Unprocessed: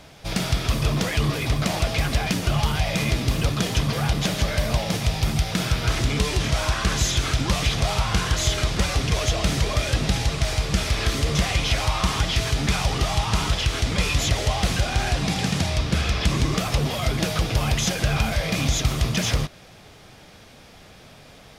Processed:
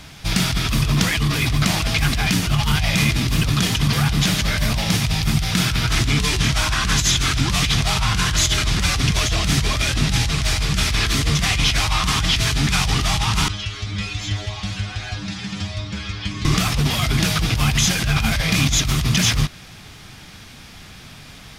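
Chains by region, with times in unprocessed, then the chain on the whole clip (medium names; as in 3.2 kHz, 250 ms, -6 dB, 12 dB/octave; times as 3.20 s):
13.48–16.45 s: low-pass 5.6 kHz + inharmonic resonator 100 Hz, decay 0.35 s, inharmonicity 0.002
whole clip: peaking EQ 540 Hz -12.5 dB 1.2 oct; compressor with a negative ratio -24 dBFS, ratio -1; trim +6.5 dB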